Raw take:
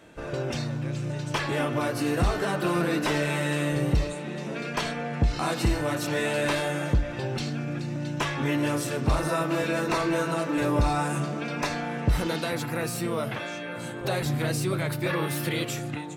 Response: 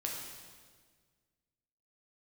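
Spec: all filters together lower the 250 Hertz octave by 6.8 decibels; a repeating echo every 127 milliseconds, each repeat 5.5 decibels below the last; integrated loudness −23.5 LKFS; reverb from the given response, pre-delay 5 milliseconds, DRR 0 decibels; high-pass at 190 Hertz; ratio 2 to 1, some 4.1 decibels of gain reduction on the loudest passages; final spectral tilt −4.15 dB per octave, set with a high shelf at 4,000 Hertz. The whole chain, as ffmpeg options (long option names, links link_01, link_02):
-filter_complex "[0:a]highpass=190,equalizer=frequency=250:width_type=o:gain=-8,highshelf=frequency=4000:gain=-6,acompressor=threshold=-32dB:ratio=2,aecho=1:1:127|254|381|508|635|762|889:0.531|0.281|0.149|0.079|0.0419|0.0222|0.0118,asplit=2[link_01][link_02];[1:a]atrim=start_sample=2205,adelay=5[link_03];[link_02][link_03]afir=irnorm=-1:irlink=0,volume=-2dB[link_04];[link_01][link_04]amix=inputs=2:normalize=0,volume=7dB"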